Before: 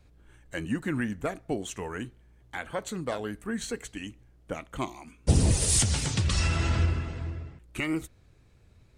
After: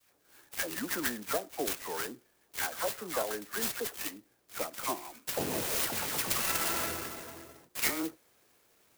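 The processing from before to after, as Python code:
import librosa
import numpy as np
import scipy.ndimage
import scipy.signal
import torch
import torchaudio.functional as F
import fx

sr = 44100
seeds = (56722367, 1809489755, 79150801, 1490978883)

y = scipy.signal.sosfilt(scipy.signal.butter(2, 420.0, 'highpass', fs=sr, output='sos'), x)
y = fx.env_lowpass_down(y, sr, base_hz=2700.0, full_db=-28.5)
y = fx.high_shelf(y, sr, hz=2100.0, db=10.0)
y = fx.dispersion(y, sr, late='lows', ms=100.0, hz=1600.0)
y = fx.clock_jitter(y, sr, seeds[0], jitter_ms=0.092)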